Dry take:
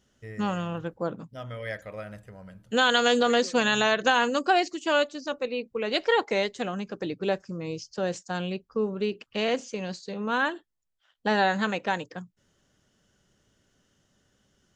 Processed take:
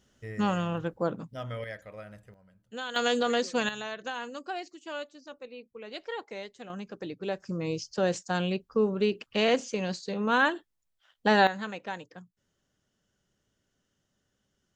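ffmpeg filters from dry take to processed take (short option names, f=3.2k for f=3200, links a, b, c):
-af "asetnsamples=n=441:p=0,asendcmd='1.64 volume volume -6dB;2.34 volume volume -15dB;2.96 volume volume -4.5dB;3.69 volume volume -14dB;6.7 volume volume -6dB;7.42 volume volume 2dB;11.47 volume volume -9dB',volume=1dB"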